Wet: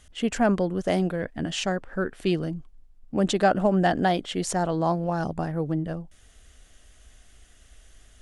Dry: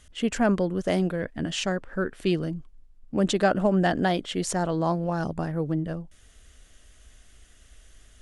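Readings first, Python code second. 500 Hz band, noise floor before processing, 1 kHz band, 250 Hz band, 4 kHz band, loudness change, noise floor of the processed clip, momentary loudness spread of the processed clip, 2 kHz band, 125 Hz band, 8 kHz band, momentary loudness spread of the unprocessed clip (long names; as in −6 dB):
+0.5 dB, −55 dBFS, +3.0 dB, 0.0 dB, 0.0 dB, +0.5 dB, −55 dBFS, 9 LU, 0.0 dB, 0.0 dB, 0.0 dB, 8 LU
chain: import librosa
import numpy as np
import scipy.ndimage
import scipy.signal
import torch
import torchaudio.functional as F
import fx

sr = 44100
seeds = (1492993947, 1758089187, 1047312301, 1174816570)

y = fx.peak_eq(x, sr, hz=760.0, db=4.0, octaves=0.36)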